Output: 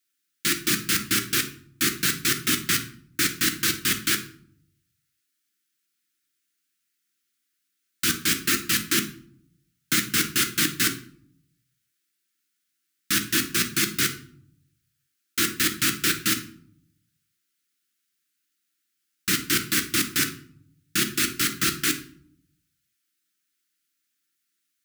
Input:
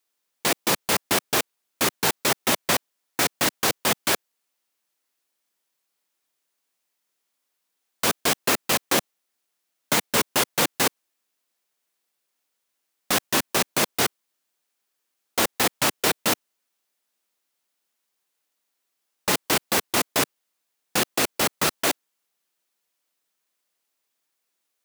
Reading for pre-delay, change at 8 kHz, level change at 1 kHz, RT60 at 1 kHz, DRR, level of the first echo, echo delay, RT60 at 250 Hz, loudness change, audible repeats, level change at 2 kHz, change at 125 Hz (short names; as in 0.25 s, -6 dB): 6 ms, +1.0 dB, -8.5 dB, 0.55 s, 5.0 dB, none, none, 1.0 s, 0.0 dB, none, +0.5 dB, +1.5 dB